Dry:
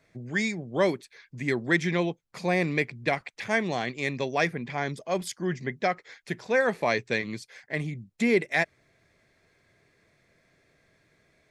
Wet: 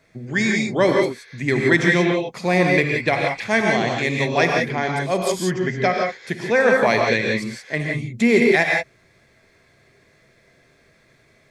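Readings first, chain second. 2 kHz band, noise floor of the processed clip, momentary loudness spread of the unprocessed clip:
+9.0 dB, -57 dBFS, 9 LU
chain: gated-style reverb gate 200 ms rising, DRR 0 dB; trim +6 dB

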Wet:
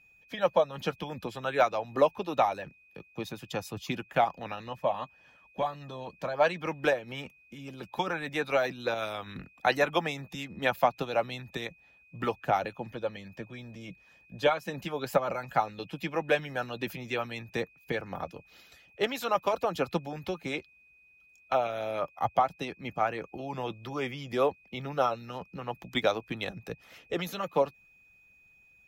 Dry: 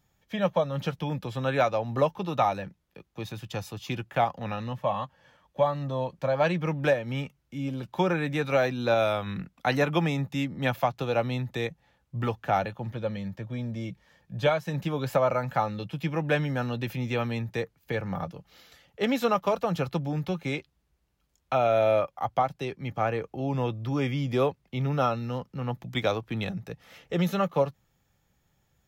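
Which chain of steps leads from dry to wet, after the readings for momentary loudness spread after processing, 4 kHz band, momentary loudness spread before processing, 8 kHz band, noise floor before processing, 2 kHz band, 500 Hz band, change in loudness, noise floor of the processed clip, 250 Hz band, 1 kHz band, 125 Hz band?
14 LU, -0.5 dB, 10 LU, 0.0 dB, -73 dBFS, -0.5 dB, -2.5 dB, -3.0 dB, -61 dBFS, -7.0 dB, -1.0 dB, -11.5 dB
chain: harmonic-percussive split harmonic -15 dB; whistle 2.5 kHz -60 dBFS; trim +1.5 dB

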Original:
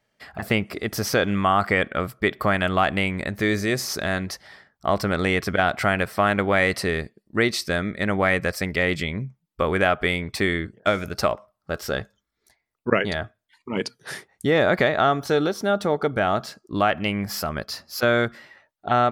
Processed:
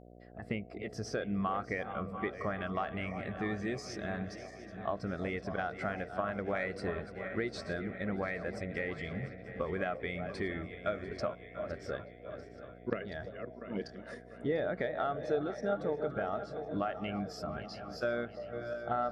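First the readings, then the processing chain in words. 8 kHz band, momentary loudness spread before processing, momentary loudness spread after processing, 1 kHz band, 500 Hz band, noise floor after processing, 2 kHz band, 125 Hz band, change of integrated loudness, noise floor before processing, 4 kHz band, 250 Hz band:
under -20 dB, 11 LU, 9 LU, -14.5 dB, -12.0 dB, -51 dBFS, -16.5 dB, -13.0 dB, -14.0 dB, -78 dBFS, -20.0 dB, -12.5 dB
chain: backward echo that repeats 347 ms, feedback 74%, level -10.5 dB; peaking EQ 8.2 kHz +6.5 dB 1.2 oct; Chebyshev shaper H 3 -15 dB, 4 -19 dB, 6 -27 dB, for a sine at -1 dBFS; compression 2.5:1, threshold -28 dBFS, peak gain reduction 8 dB; mains buzz 60 Hz, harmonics 12, -44 dBFS -1 dB/octave; distance through air 57 m; on a send: repeats whose band climbs or falls 344 ms, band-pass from 620 Hz, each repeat 0.7 oct, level -7 dB; on the sum: spectral contrast expander 1.5:1; trim -7 dB

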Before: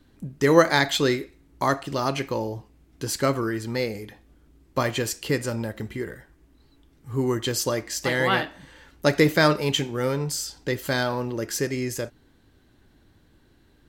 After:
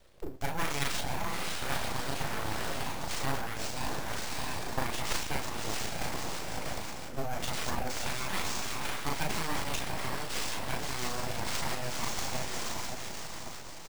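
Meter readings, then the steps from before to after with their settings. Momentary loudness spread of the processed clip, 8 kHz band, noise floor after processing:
5 LU, -4.0 dB, -41 dBFS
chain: on a send: echo that smears into a reverb 642 ms, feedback 45%, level -4.5 dB; on the sum: rotary cabinet horn 1.1 Hz, later 6 Hz, at 5.09 s; treble shelf 5 kHz +8 dB; reverse; compression 12:1, threshold -31 dBFS, peak gain reduction 21 dB; reverse; transient shaper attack +8 dB, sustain +12 dB; high-pass 150 Hz 12 dB/octave; doubling 37 ms -3 dB; sample-rate reducer 13 kHz, jitter 0%; full-wave rectifier

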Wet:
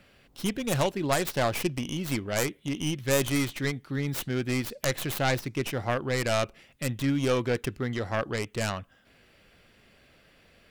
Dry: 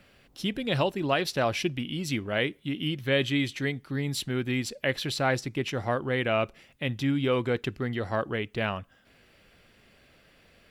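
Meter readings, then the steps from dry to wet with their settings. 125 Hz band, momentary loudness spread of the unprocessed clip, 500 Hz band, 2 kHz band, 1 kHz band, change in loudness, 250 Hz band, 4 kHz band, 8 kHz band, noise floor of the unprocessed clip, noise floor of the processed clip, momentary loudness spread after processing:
+0.5 dB, 6 LU, -0.5 dB, -1.5 dB, 0.0 dB, 0.0 dB, 0.0 dB, -2.0 dB, +7.0 dB, -61 dBFS, -61 dBFS, 6 LU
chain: tracing distortion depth 0.37 ms

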